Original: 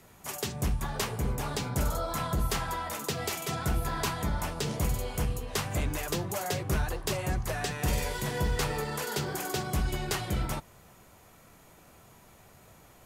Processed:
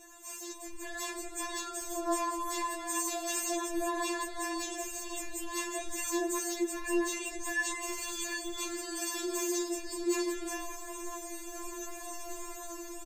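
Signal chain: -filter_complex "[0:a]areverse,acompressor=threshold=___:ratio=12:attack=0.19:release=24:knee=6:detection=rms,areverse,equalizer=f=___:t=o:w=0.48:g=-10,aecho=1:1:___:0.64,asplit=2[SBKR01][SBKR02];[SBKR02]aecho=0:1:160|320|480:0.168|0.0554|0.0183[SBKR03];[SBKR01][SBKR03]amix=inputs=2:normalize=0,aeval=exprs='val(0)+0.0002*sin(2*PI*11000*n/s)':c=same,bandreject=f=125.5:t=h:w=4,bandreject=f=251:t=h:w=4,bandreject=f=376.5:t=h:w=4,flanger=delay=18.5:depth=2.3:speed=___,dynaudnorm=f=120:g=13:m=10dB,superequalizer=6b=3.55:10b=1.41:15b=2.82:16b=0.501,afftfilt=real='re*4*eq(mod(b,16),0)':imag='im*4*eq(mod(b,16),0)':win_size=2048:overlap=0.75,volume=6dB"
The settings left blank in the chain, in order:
-41dB, 210, 1.8, 0.66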